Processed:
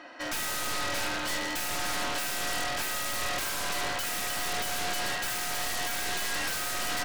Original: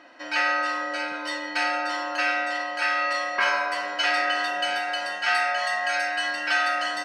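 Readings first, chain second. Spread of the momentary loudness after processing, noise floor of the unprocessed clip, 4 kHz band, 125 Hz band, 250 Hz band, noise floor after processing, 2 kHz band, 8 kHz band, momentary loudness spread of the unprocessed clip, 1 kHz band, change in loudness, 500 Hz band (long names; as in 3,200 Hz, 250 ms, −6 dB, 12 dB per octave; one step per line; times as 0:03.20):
1 LU, −34 dBFS, −2.5 dB, can't be measured, −2.5 dB, −33 dBFS, −9.0 dB, +10.0 dB, 5 LU, −8.5 dB, −5.5 dB, −6.5 dB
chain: harmonic generator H 5 −10 dB, 8 −7 dB, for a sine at −9.5 dBFS
wave folding −22 dBFS
level −5 dB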